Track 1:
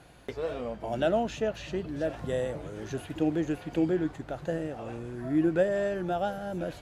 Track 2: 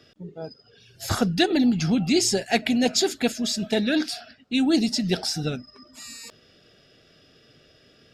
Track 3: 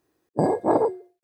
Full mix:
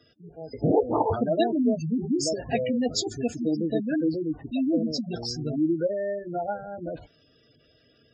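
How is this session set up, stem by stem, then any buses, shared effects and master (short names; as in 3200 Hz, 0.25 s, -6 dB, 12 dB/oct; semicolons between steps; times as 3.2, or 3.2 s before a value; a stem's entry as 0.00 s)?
+1.5 dB, 0.25 s, no send, dry
-3.5 dB, 0.00 s, no send, dry
-2.0 dB, 0.25 s, no send, phaser 1.9 Hz, delay 1.2 ms, feedback 62%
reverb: off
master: spectral gate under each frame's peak -15 dB strong; notch comb 190 Hz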